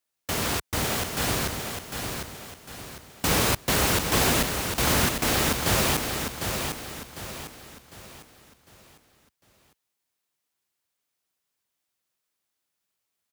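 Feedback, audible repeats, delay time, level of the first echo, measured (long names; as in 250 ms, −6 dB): 39%, 4, 752 ms, −6.0 dB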